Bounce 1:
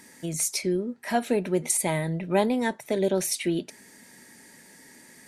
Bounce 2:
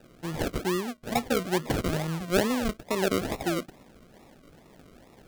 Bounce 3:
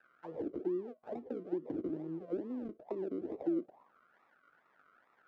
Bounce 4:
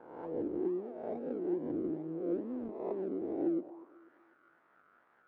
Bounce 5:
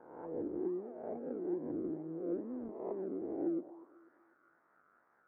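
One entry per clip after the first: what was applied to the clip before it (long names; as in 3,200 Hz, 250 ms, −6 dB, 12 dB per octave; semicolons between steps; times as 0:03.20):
sample-and-hold swept by an LFO 40×, swing 60% 2.3 Hz; level −2 dB
high-frequency loss of the air 50 metres; downward compressor 6 to 1, threshold −26 dBFS, peak gain reduction 8.5 dB; envelope filter 320–1,600 Hz, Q 6.3, down, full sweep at −27.5 dBFS; level +2.5 dB
peak hold with a rise ahead of every peak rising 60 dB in 0.94 s; low-pass filter 1,600 Hz 6 dB per octave; delay with a band-pass on its return 245 ms, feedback 37%, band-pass 500 Hz, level −18.5 dB
low-pass filter 1,900 Hz 24 dB per octave; level −3 dB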